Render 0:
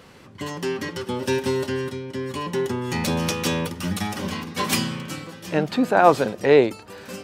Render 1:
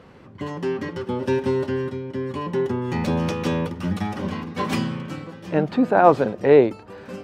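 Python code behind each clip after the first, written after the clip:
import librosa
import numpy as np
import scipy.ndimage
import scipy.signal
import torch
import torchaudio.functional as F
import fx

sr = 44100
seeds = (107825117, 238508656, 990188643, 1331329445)

y = fx.lowpass(x, sr, hz=1200.0, slope=6)
y = F.gain(torch.from_numpy(y), 2.0).numpy()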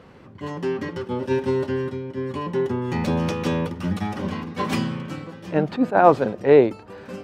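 y = fx.attack_slew(x, sr, db_per_s=310.0)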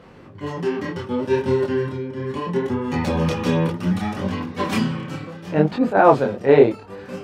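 y = fx.chorus_voices(x, sr, voices=2, hz=0.68, base_ms=25, depth_ms=5.0, mix_pct=45)
y = F.gain(torch.from_numpy(y), 5.5).numpy()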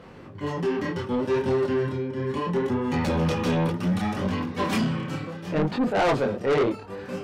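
y = 10.0 ** (-18.5 / 20.0) * np.tanh(x / 10.0 ** (-18.5 / 20.0))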